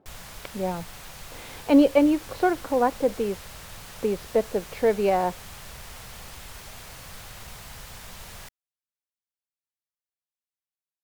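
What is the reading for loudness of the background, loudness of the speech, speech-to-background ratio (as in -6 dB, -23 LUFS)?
-41.5 LUFS, -24.0 LUFS, 17.5 dB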